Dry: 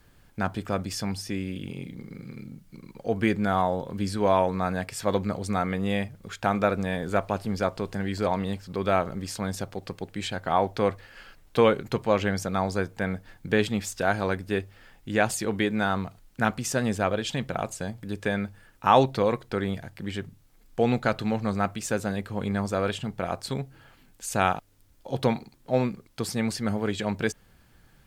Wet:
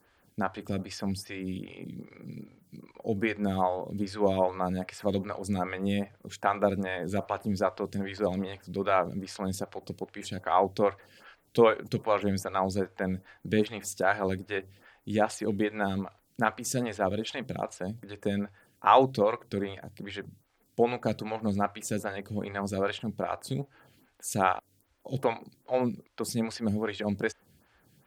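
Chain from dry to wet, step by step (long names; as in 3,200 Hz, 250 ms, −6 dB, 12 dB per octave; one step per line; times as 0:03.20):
high-pass filter 71 Hz
phaser with staggered stages 2.5 Hz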